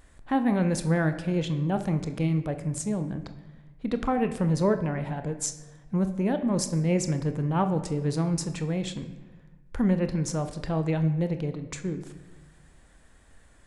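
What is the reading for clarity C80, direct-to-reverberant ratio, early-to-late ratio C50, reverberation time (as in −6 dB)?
13.0 dB, 8.0 dB, 11.0 dB, 1.2 s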